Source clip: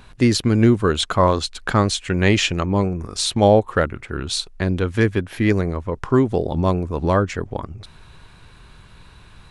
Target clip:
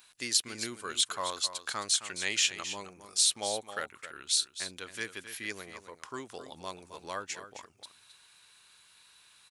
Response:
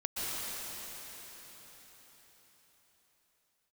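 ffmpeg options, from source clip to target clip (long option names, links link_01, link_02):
-filter_complex "[0:a]aderivative,asplit=2[link_01][link_02];[link_02]aecho=0:1:265:0.266[link_03];[link_01][link_03]amix=inputs=2:normalize=0"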